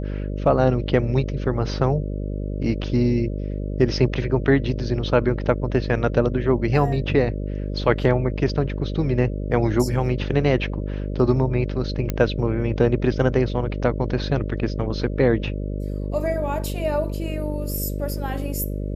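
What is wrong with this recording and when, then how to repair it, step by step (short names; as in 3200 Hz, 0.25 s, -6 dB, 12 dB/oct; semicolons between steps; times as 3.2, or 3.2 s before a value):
buzz 50 Hz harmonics 12 -27 dBFS
12.1 pop -10 dBFS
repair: de-click; de-hum 50 Hz, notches 12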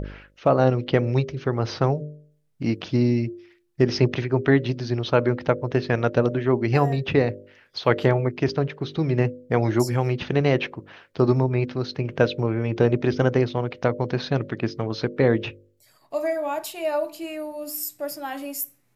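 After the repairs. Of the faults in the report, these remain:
none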